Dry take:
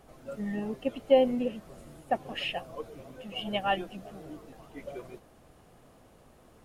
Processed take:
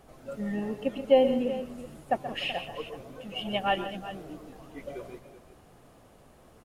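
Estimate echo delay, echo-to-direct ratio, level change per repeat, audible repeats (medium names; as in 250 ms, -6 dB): 128 ms, -8.0 dB, no regular repeats, 3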